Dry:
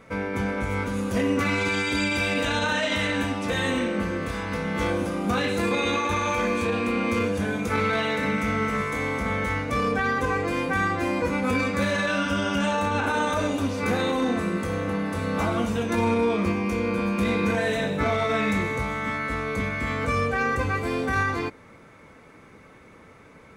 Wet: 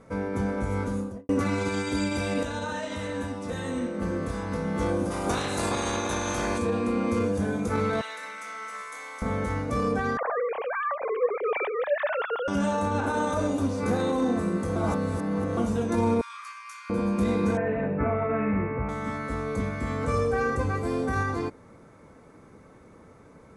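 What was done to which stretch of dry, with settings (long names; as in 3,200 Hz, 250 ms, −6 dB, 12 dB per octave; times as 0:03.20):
0:00.87–0:01.29: fade out and dull
0:02.43–0:04.02: tuned comb filter 82 Hz, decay 0.16 s, mix 70%
0:05.10–0:06.57: ceiling on every frequency bin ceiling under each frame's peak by 19 dB
0:08.01–0:09.22: high-pass filter 1,300 Hz
0:10.17–0:12.48: three sine waves on the formant tracks
0:14.76–0:15.57: reverse
0:16.21–0:16.90: Butterworth high-pass 1,100 Hz 72 dB per octave
0:17.57–0:18.89: Chebyshev low-pass filter 2,600 Hz, order 5
0:19.97–0:20.50: flutter between parallel walls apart 10 metres, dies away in 0.54 s
whole clip: Butterworth low-pass 11,000 Hz 48 dB per octave; parametric band 2,600 Hz −12 dB 1.6 octaves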